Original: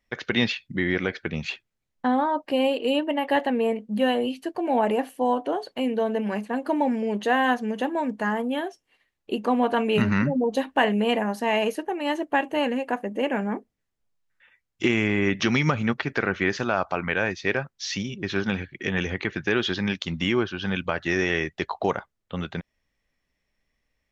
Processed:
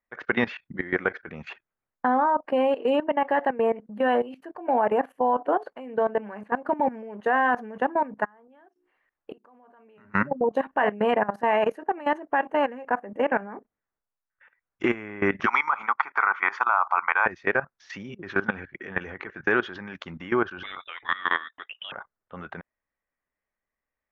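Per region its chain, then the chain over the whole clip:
8.25–10.14 s: hum notches 60/120/180/240/300/360/420 Hz + inverted gate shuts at -27 dBFS, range -26 dB
15.46–17.26 s: resonant high-pass 920 Hz, resonance Q 2.4 + treble shelf 5.6 kHz -5.5 dB + comb 0.9 ms, depth 52%
20.63–21.92 s: bass shelf 110 Hz -4.5 dB + frequency inversion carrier 3.7 kHz
whole clip: FFT filter 130 Hz 0 dB, 1.1 kHz +13 dB, 1.5 kHz +13 dB, 4 kHz -9 dB; level held to a coarse grid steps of 17 dB; trim -4 dB

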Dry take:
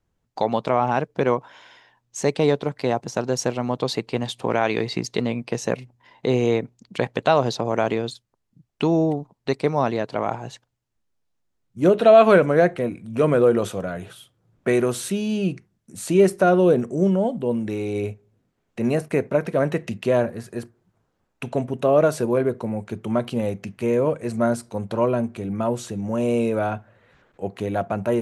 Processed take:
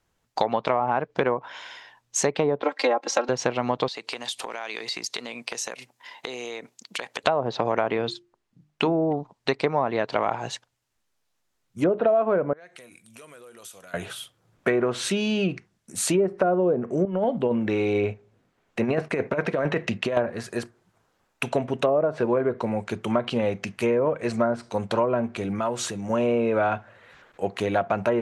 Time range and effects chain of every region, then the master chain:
2.62–3.29 s: high-pass 300 Hz 24 dB/octave + comb 3.7 ms, depth 98%
3.88–7.24 s: high-pass 190 Hz + tilt EQ +2 dB/octave + compression 10:1, threshold -34 dBFS
7.97–9.11 s: low-pass 3.4 kHz 6 dB/octave + hum notches 50/100/150/200/250/300/350/400 Hz
12.53–13.94 s: pre-emphasis filter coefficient 0.9 + compression 10:1, threshold -46 dBFS
17.05–20.17 s: treble shelf 4 kHz -8.5 dB + compressor with a negative ratio -22 dBFS, ratio -0.5
25.59–26.10 s: dynamic bell 1.4 kHz, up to +4 dB, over -38 dBFS, Q 0.74 + compression 2:1, threshold -31 dBFS
whole clip: low-pass that closes with the level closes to 860 Hz, closed at -14 dBFS; bass shelf 480 Hz -11.5 dB; compression 6:1, threshold -27 dBFS; trim +8.5 dB

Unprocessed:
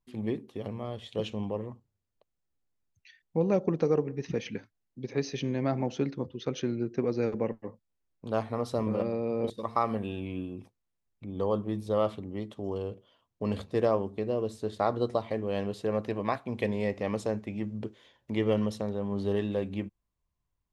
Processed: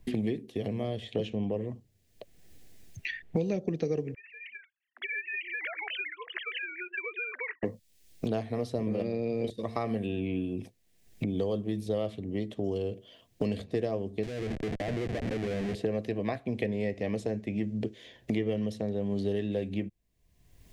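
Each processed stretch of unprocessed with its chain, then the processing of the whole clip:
4.14–7.63 s: formants replaced by sine waves + high-pass 1.4 kHz 24 dB/octave + compression 3:1, threshold -53 dBFS
14.23–15.75 s: compression 4:1, threshold -33 dBFS + Schmitt trigger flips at -41.5 dBFS + distance through air 63 m
whole clip: high-order bell 1.1 kHz -12 dB 1 oct; band-stop 560 Hz, Q 12; three bands compressed up and down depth 100%

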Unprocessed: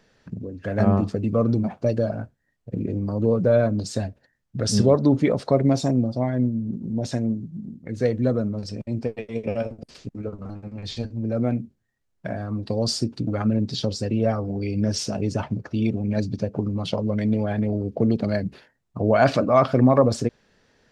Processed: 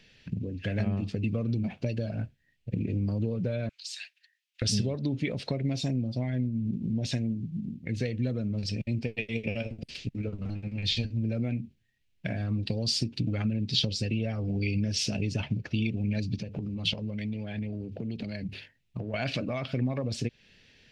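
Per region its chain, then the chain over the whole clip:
3.69–4.62 s: Bessel high-pass 2.1 kHz, order 6 + compression 3:1, threshold -39 dBFS
16.40–19.14 s: compression 10:1, threshold -29 dBFS + hum notches 50/100/150 Hz
whole clip: compression 5:1, threshold -26 dBFS; FFT filter 130 Hz 0 dB, 1.2 kHz -13 dB, 2.6 kHz +10 dB, 7.3 kHz -4 dB; trim +2.5 dB

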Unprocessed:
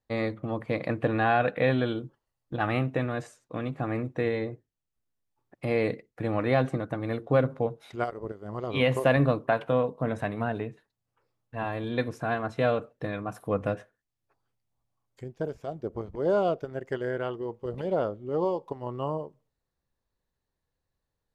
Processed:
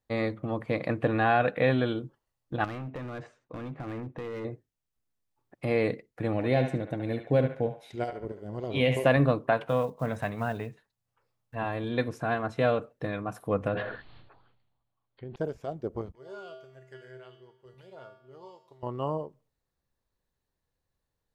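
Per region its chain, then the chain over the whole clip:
2.64–4.45 s: low-pass 2.8 kHz + compression 5:1, threshold -30 dBFS + overload inside the chain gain 32.5 dB
6.33–9.06 s: peaking EQ 1.2 kHz -11 dB 0.91 oct + band-stop 1.2 kHz, Q 13 + band-passed feedback delay 71 ms, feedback 49%, band-pass 1.5 kHz, level -5 dB
9.69–11.56 s: block-companded coder 7-bit + peaking EQ 330 Hz -6 dB 0.96 oct
13.68–15.36 s: rippled Chebyshev low-pass 4.4 kHz, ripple 3 dB + decay stretcher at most 47 dB/s
16.12–18.83 s: tilt shelf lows -8 dB, about 1.3 kHz + feedback comb 130 Hz, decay 0.63 s, harmonics odd, mix 90% + bucket-brigade echo 118 ms, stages 4096, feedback 58%, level -20.5 dB
whole clip: none

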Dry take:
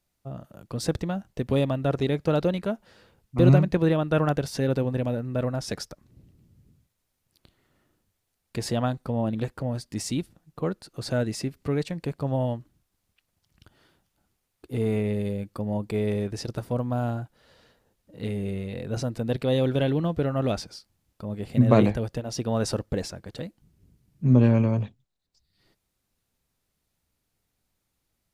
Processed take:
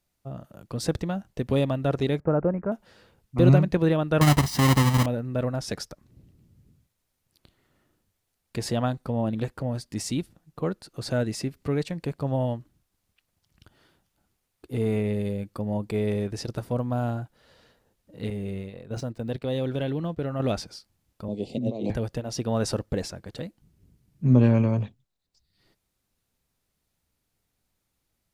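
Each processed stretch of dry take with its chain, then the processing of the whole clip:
2.20–2.72 s: low-pass 1.5 kHz 24 dB/octave + careless resampling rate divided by 8×, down none, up filtered
4.21–5.06 s: square wave that keeps the level + high-pass 46 Hz + comb 1 ms, depth 57%
18.30–20.40 s: median filter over 3 samples + gate -33 dBFS, range -11 dB + compression 1.5:1, threshold -32 dBFS
21.28–21.90 s: three-band isolator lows -14 dB, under 200 Hz, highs -21 dB, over 7.3 kHz + compressor with a negative ratio -28 dBFS + Butterworth band-stop 1.5 kHz, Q 0.58
whole clip: none

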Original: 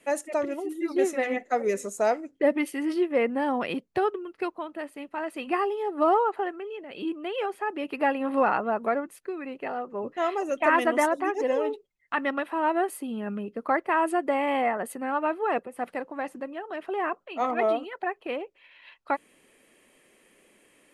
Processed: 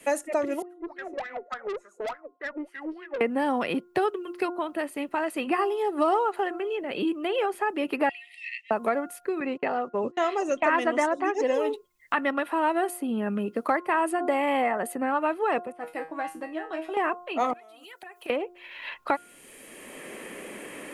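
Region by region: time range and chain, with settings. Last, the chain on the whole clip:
0.62–3.21 s: wah-wah 3.4 Hz 370–1700 Hz, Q 14 + valve stage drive 39 dB, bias 0.35
8.09–8.71 s: brick-wall FIR high-pass 1.8 kHz + distance through air 78 m
9.40–11.54 s: low-pass 7.7 kHz 24 dB/octave + gate -43 dBFS, range -30 dB
15.72–16.97 s: level-controlled noise filter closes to 2.4 kHz, open at -30.5 dBFS + feedback comb 160 Hz, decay 0.25 s, mix 90%
17.53–18.30 s: pre-emphasis filter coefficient 0.9 + compression 20:1, threshold -53 dBFS
whole clip: treble shelf 7.1 kHz +9 dB; de-hum 354.5 Hz, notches 4; three bands compressed up and down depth 70%; trim +1 dB

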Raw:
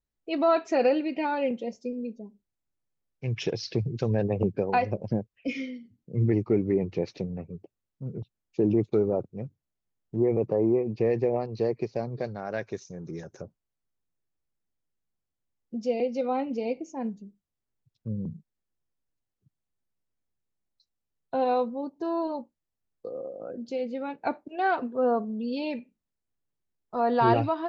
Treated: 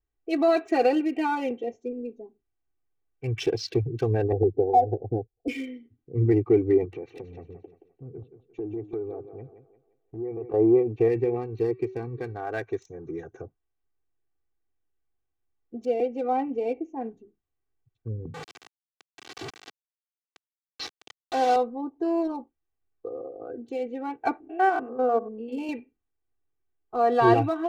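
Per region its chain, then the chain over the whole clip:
4.32–5.48 s: Chebyshev low-pass 790 Hz, order 5 + comb 2.5 ms, depth 30%
6.85–10.54 s: compression 2.5:1, threshold -40 dBFS + thinning echo 174 ms, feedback 40%, high-pass 220 Hz, level -9 dB
11.08–12.35 s: peaking EQ 650 Hz -13.5 dB 0.51 oct + de-hum 378.7 Hz, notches 37
15.85–17.03 s: treble shelf 2.5 kHz -6.5 dB + tape noise reduction on one side only decoder only
18.34–21.56 s: one-bit delta coder 32 kbps, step -28.5 dBFS + high-pass 180 Hz
24.40–25.69 s: spectrogram pixelated in time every 100 ms + peaking EQ 3.8 kHz -11.5 dB 0.25 oct + hum notches 60/120/180/240/300/360/420/480 Hz
whole clip: local Wiener filter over 9 samples; comb 2.6 ms, depth 96%

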